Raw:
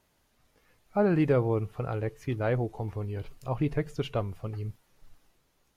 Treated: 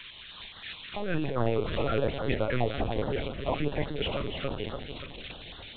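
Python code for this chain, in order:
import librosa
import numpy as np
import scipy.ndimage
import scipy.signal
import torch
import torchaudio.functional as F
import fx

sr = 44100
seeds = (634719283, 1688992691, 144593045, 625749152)

p1 = x + 0.5 * 10.0 ** (-29.0 / 20.0) * np.diff(np.sign(x), prepend=np.sign(x[:1]))
p2 = fx.highpass(p1, sr, hz=510.0, slope=6)
p3 = fx.tilt_eq(p2, sr, slope=1.5)
p4 = p3 + 0.6 * np.pad(p3, (int(7.2 * sr / 1000.0), 0))[:len(p3)]
p5 = fx.over_compress(p4, sr, threshold_db=-35.0, ratio=-1.0)
p6 = fx.fold_sine(p5, sr, drive_db=6, ceiling_db=-15.0)
p7 = p6 + fx.echo_feedback(p6, sr, ms=286, feedback_pct=60, wet_db=-7, dry=0)
p8 = fx.lpc_vocoder(p7, sr, seeds[0], excitation='pitch_kept', order=10)
y = fx.filter_held_notch(p8, sr, hz=9.6, low_hz=790.0, high_hz=2400.0)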